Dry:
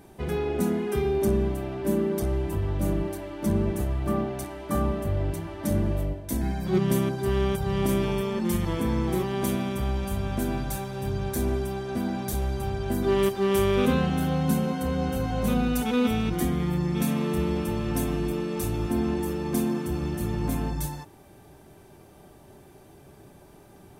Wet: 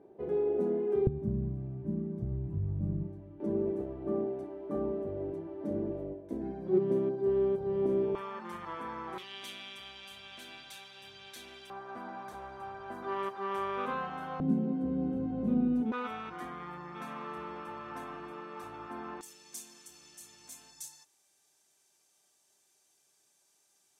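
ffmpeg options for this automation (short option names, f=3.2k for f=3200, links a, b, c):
-af "asetnsamples=n=441:p=0,asendcmd='1.07 bandpass f 130;3.4 bandpass f 400;8.15 bandpass f 1200;9.18 bandpass f 3200;11.7 bandpass f 1100;14.4 bandpass f 280;15.92 bandpass f 1200;19.21 bandpass f 6700',bandpass=f=440:t=q:w=2.3:csg=0"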